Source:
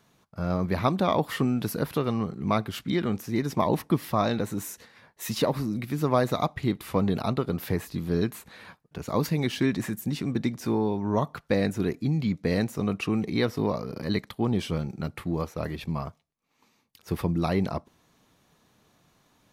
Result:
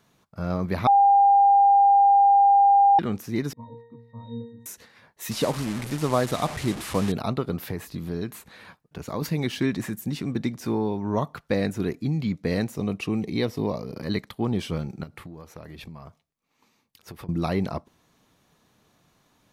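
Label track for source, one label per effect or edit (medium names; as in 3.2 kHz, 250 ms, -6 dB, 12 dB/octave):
0.870000	2.990000	bleep 800 Hz -13 dBFS
3.530000	4.660000	pitch-class resonator A#, decay 0.6 s
5.310000	7.120000	one-bit delta coder 64 kbps, step -28.5 dBFS
7.620000	9.220000	compression 2:1, threshold -28 dBFS
12.740000	13.960000	peaking EQ 1.4 kHz -8 dB 0.64 oct
15.030000	17.290000	compression 12:1, threshold -36 dBFS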